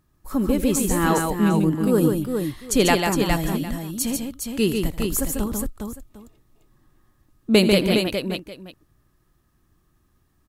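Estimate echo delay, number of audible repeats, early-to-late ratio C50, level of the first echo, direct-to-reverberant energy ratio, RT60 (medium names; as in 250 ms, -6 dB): 82 ms, 4, no reverb, -16.0 dB, no reverb, no reverb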